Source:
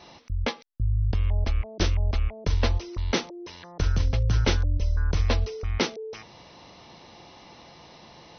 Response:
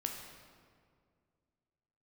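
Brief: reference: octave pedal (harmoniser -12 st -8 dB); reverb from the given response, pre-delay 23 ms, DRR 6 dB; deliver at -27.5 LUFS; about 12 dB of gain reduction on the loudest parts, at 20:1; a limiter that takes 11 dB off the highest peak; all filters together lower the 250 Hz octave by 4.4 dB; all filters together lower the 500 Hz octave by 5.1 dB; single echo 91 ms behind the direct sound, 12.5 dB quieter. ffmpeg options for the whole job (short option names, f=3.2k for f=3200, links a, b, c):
-filter_complex "[0:a]equalizer=f=250:t=o:g=-4.5,equalizer=f=500:t=o:g=-5,acompressor=threshold=-31dB:ratio=20,alimiter=level_in=5.5dB:limit=-24dB:level=0:latency=1,volume=-5.5dB,aecho=1:1:91:0.237,asplit=2[a][b];[1:a]atrim=start_sample=2205,adelay=23[c];[b][c]afir=irnorm=-1:irlink=0,volume=-7dB[d];[a][d]amix=inputs=2:normalize=0,asplit=2[e][f];[f]asetrate=22050,aresample=44100,atempo=2,volume=-8dB[g];[e][g]amix=inputs=2:normalize=0,volume=10.5dB"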